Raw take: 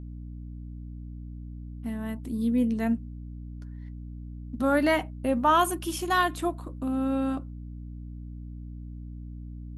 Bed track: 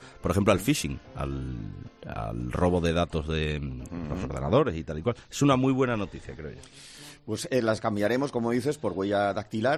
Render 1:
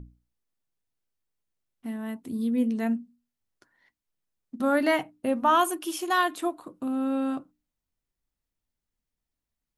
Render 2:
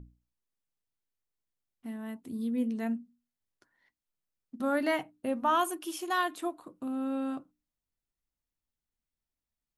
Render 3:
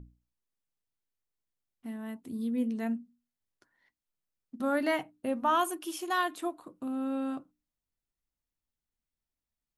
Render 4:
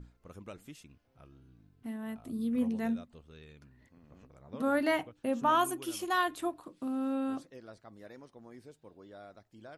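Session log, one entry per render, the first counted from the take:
hum notches 60/120/180/240/300 Hz
trim -5.5 dB
no audible change
add bed track -25 dB

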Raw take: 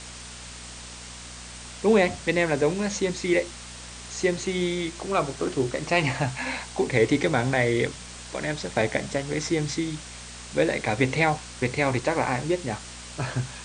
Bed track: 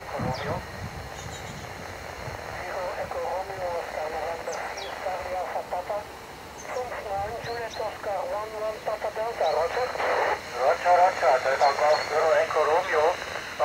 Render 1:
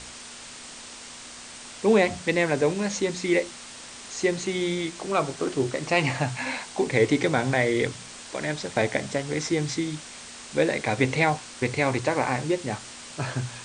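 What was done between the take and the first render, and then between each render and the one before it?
de-hum 60 Hz, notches 3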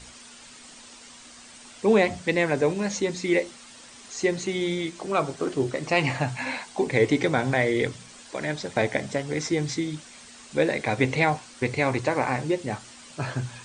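noise reduction 8 dB, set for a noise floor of -42 dBFS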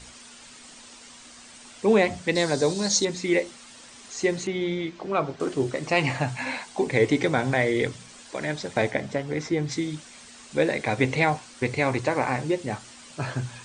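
2.35–3.05 s: resonant high shelf 3.3 kHz +8 dB, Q 3; 4.47–5.40 s: distance through air 160 m; 8.90–9.70 s: low-pass 3.8 kHz -> 2.3 kHz 6 dB/octave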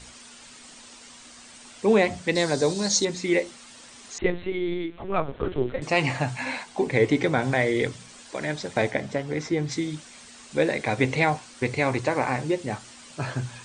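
4.18–5.82 s: LPC vocoder at 8 kHz pitch kept; 6.63–7.42 s: tone controls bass +1 dB, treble -4 dB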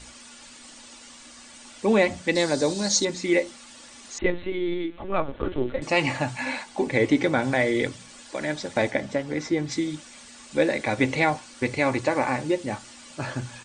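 comb 3.5 ms, depth 36%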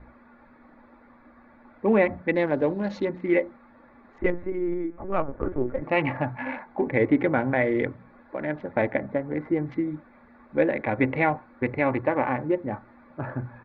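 local Wiener filter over 15 samples; low-pass 2.4 kHz 24 dB/octave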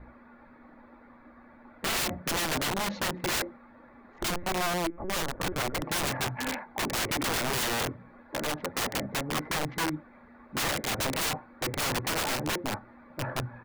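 integer overflow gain 24 dB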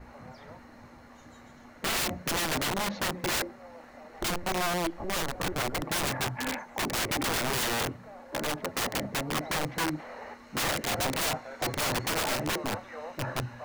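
add bed track -19 dB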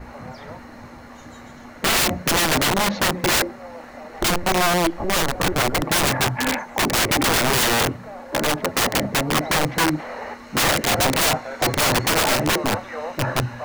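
trim +10.5 dB

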